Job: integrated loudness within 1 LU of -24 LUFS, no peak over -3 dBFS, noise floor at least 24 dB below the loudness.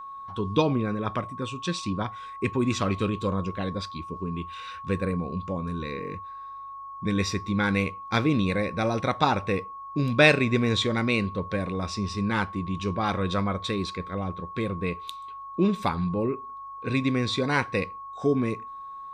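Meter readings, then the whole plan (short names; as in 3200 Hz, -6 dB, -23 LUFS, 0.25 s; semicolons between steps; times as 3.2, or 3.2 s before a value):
steady tone 1100 Hz; tone level -37 dBFS; loudness -27.5 LUFS; peak -3.5 dBFS; loudness target -24.0 LUFS
-> notch 1100 Hz, Q 30; gain +3.5 dB; limiter -3 dBFS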